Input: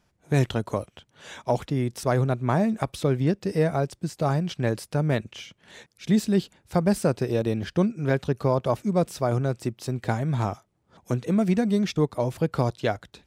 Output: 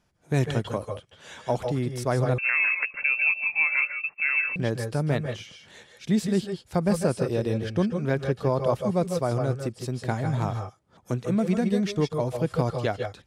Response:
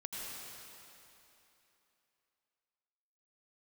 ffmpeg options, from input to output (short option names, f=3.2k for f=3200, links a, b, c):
-filter_complex "[1:a]atrim=start_sample=2205,atrim=end_sample=3969,asetrate=23814,aresample=44100[a];[0:a][a]afir=irnorm=-1:irlink=0,asettb=1/sr,asplit=3[b][c][d];[b]atrim=end=2.384[e];[c]atrim=start=2.38:end=4.56,asetpts=PTS-STARTPTS,afade=t=in:d=0.004:c=qsin,afade=t=out:st=2.176:d=0.004:c=qsin,lowpass=f=2.4k:t=q:w=0.5098,lowpass=f=2.4k:t=q:w=0.6013,lowpass=f=2.4k:t=q:w=0.9,lowpass=f=2.4k:t=q:w=2.563,afreqshift=-2800[f];[d]atrim=start=4.556[g];[e][f]acrossfade=d=0.004:c1=hsin:c2=qsin[h];[h][g]acrossfade=d=0.004:c1=qsin:c2=hsin"